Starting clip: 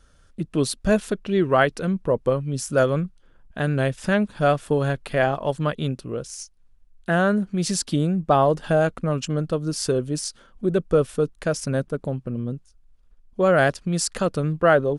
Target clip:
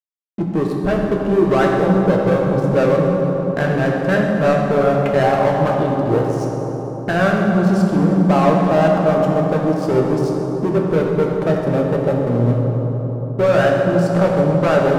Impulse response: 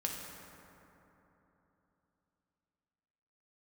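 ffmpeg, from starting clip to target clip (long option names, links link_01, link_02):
-filter_complex "[0:a]afwtdn=0.0355,highshelf=frequency=3800:gain=-8.5,asplit=2[link_01][link_02];[link_02]acompressor=threshold=-36dB:ratio=6,volume=0dB[link_03];[link_01][link_03]amix=inputs=2:normalize=0,alimiter=limit=-16dB:level=0:latency=1:release=167,areverse,acompressor=mode=upward:threshold=-39dB:ratio=2.5,areverse,asplit=2[link_04][link_05];[link_05]highpass=frequency=720:poles=1,volume=19dB,asoftclip=type=tanh:threshold=-16dB[link_06];[link_04][link_06]amix=inputs=2:normalize=0,lowpass=frequency=2700:poles=1,volume=-6dB,aeval=exprs='sgn(val(0))*max(abs(val(0))-0.00631,0)':channel_layout=same[link_07];[1:a]atrim=start_sample=2205,asetrate=28224,aresample=44100[link_08];[link_07][link_08]afir=irnorm=-1:irlink=0,volume=3.5dB"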